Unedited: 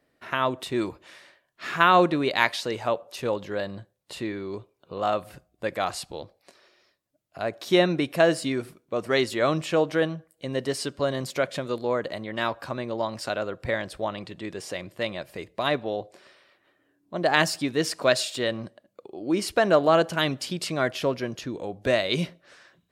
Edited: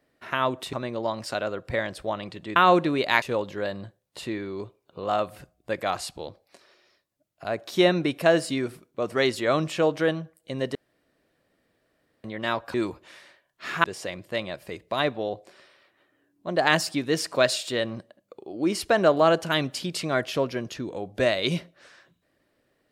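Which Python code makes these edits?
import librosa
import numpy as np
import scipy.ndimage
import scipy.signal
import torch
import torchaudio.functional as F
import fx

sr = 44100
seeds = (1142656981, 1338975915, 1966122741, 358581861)

y = fx.edit(x, sr, fx.swap(start_s=0.73, length_s=1.1, other_s=12.68, other_length_s=1.83),
    fx.cut(start_s=2.49, length_s=0.67),
    fx.room_tone_fill(start_s=10.69, length_s=1.49), tone=tone)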